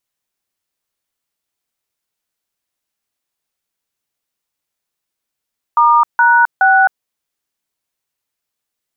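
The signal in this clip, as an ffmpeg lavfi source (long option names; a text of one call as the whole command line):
ffmpeg -f lavfi -i "aevalsrc='0.335*clip(min(mod(t,0.42),0.263-mod(t,0.42))/0.002,0,1)*(eq(floor(t/0.42),0)*(sin(2*PI*941*mod(t,0.42))+sin(2*PI*1209*mod(t,0.42)))+eq(floor(t/0.42),1)*(sin(2*PI*941*mod(t,0.42))+sin(2*PI*1477*mod(t,0.42)))+eq(floor(t/0.42),2)*(sin(2*PI*770*mod(t,0.42))+sin(2*PI*1477*mod(t,0.42))))':duration=1.26:sample_rate=44100" out.wav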